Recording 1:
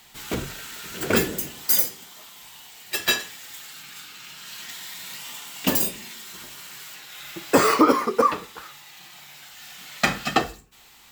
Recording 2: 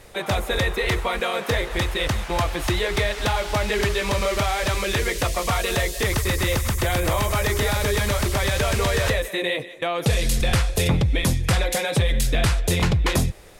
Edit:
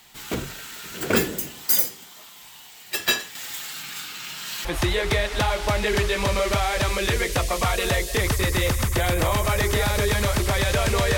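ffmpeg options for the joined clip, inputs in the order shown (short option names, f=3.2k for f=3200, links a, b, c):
-filter_complex "[0:a]asettb=1/sr,asplit=3[a][b][c];[a]atrim=end=3.354[d];[b]atrim=start=3.35:end=4.65,asetpts=PTS-STARTPTS,afade=t=in:d=0.004:c=qsin,afade=t=out:st=1.296:d=0.004:c=qsin,acontrast=76[e];[c]atrim=start=4.646[f];[d][e]acrossfade=d=0.004:c1=hsin:c2=qsin[g];[g][f]acrossfade=d=0.004:c1=qsin:c2=hsin,apad=whole_dur=11.17,atrim=end=11.17,atrim=end=4.652[h];[1:a]atrim=start=2.508:end=9.03[i];[h][i]acrossfade=d=0.004:c1=hsin:c2=hsin"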